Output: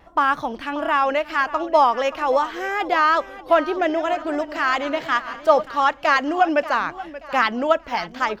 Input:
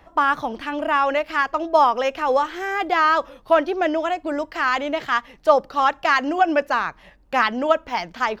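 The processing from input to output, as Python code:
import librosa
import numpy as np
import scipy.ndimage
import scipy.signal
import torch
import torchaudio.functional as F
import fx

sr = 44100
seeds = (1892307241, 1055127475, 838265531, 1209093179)

y = fx.reverse_delay_fb(x, sr, ms=109, feedback_pct=49, wet_db=-14, at=(3.59, 5.68))
y = fx.echo_feedback(y, sr, ms=582, feedback_pct=37, wet_db=-16)
y = fx.vibrato(y, sr, rate_hz=2.6, depth_cents=37.0)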